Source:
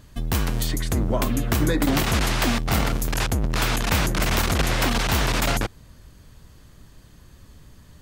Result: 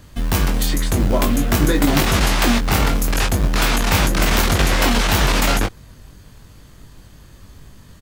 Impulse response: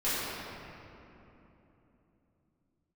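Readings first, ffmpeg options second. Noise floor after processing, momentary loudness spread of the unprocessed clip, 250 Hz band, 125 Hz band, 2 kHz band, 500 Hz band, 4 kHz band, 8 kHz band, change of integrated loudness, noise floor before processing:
-45 dBFS, 4 LU, +5.5 dB, +4.0 dB, +5.0 dB, +5.0 dB, +5.5 dB, +5.5 dB, +5.5 dB, -50 dBFS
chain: -filter_complex "[0:a]acrossover=split=420|1100[s0][s1][s2];[s0]acrusher=bits=4:mode=log:mix=0:aa=0.000001[s3];[s3][s1][s2]amix=inputs=3:normalize=0,asplit=2[s4][s5];[s5]adelay=21,volume=0.562[s6];[s4][s6]amix=inputs=2:normalize=0,volume=1.58"

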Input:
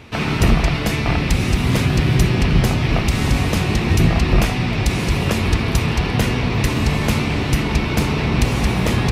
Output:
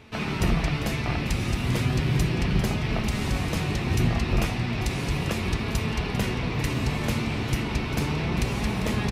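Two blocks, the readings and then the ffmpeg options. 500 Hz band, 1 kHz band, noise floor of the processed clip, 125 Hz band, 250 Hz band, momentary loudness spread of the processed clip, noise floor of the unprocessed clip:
-8.0 dB, -8.0 dB, -30 dBFS, -8.5 dB, -8.0 dB, 3 LU, -22 dBFS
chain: -filter_complex "[0:a]flanger=delay=4.6:depth=4.3:regen=68:speed=0.34:shape=sinusoidal,asplit=2[s0][s1];[s1]aecho=0:1:397:0.224[s2];[s0][s2]amix=inputs=2:normalize=0,volume=0.631"

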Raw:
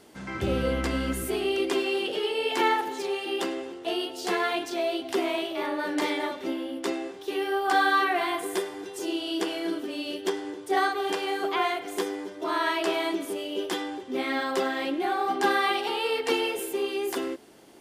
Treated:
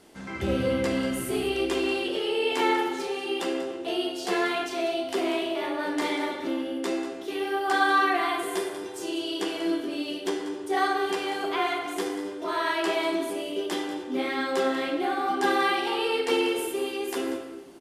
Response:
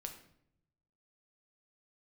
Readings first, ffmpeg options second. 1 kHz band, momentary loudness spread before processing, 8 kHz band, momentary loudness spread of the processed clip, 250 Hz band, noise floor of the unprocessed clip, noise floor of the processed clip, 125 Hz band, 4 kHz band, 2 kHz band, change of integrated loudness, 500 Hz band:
0.0 dB, 8 LU, 0.0 dB, 7 LU, +2.0 dB, -42 dBFS, -38 dBFS, no reading, 0.0 dB, 0.0 dB, +0.5 dB, +0.5 dB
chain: -filter_complex "[0:a]aecho=1:1:191:0.224[s0];[1:a]atrim=start_sample=2205,asetrate=25137,aresample=44100[s1];[s0][s1]afir=irnorm=-1:irlink=0"

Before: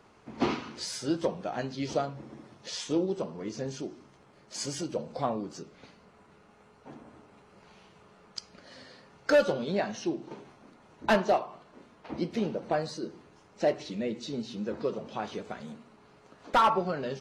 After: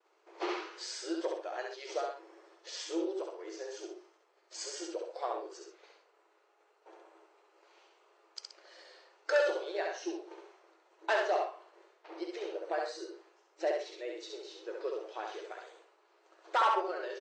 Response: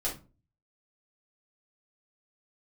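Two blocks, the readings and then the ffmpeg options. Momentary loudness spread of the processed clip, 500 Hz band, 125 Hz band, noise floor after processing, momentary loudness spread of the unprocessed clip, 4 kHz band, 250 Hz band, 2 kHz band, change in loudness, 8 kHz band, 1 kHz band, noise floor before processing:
21 LU, -4.5 dB, under -40 dB, -70 dBFS, 21 LU, -4.5 dB, -10.0 dB, -2.0 dB, -5.0 dB, -4.5 dB, -4.0 dB, -59 dBFS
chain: -filter_complex "[0:a]afftfilt=real='re*between(b*sr/4096,320,8700)':imag='im*between(b*sr/4096,320,8700)':win_size=4096:overlap=0.75,agate=range=0.0224:threshold=0.00178:ratio=3:detection=peak,adynamicequalizer=threshold=0.00224:dfrequency=1700:dqfactor=3.2:tfrequency=1700:tqfactor=3.2:attack=5:release=100:ratio=0.375:range=2:mode=boostabove:tftype=bell,asplit=2[s0][s1];[s1]aecho=0:1:67.06|125.4:0.708|0.282[s2];[s0][s2]amix=inputs=2:normalize=0,volume=0.473"

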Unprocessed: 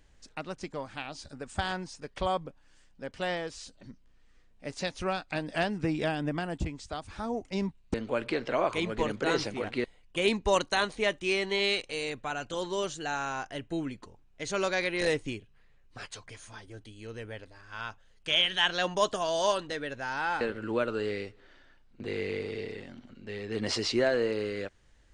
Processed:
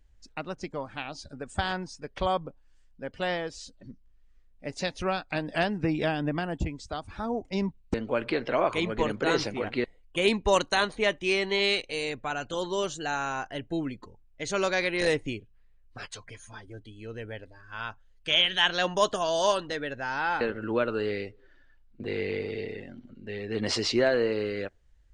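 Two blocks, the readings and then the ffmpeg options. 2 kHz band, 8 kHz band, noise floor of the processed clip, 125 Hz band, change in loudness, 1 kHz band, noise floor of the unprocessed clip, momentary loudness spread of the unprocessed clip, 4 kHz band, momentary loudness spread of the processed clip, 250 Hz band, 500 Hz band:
+2.5 dB, +1.5 dB, -59 dBFS, +2.5 dB, +2.5 dB, +2.5 dB, -60 dBFS, 17 LU, +2.5 dB, 17 LU, +2.5 dB, +2.5 dB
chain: -af "afftdn=nr=13:nf=-52,volume=1.33"

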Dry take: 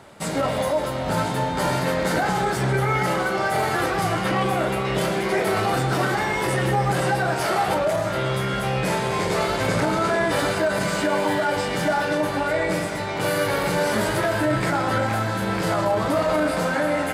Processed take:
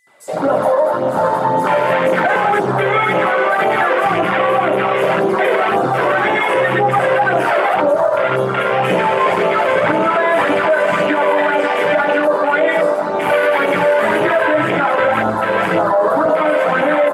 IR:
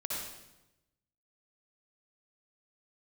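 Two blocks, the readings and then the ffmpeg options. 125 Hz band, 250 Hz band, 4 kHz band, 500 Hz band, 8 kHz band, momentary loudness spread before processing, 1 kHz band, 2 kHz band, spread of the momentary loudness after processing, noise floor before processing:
-2.5 dB, +3.5 dB, +2.0 dB, +9.5 dB, no reading, 3 LU, +9.0 dB, +8.5 dB, 2 LU, -26 dBFS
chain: -filter_complex "[0:a]asplit=2[s0][s1];[1:a]atrim=start_sample=2205,atrim=end_sample=3969[s2];[s1][s2]afir=irnorm=-1:irlink=0,volume=0.335[s3];[s0][s3]amix=inputs=2:normalize=0,tremolo=f=300:d=0.261,highpass=330,acrossover=split=5400[s4][s5];[s4]adelay=70[s6];[s6][s5]amix=inputs=2:normalize=0,aeval=exprs='val(0)+0.00282*sin(2*PI*2000*n/s)':c=same,flanger=delay=0.3:depth=1.7:regen=26:speed=1.9:shape=sinusoidal,acontrast=86,afwtdn=0.0708,asplit=2[s7][s8];[s8]adelay=17,volume=0.211[s9];[s7][s9]amix=inputs=2:normalize=0,alimiter=level_in=4.47:limit=0.891:release=50:level=0:latency=1,volume=0.562"

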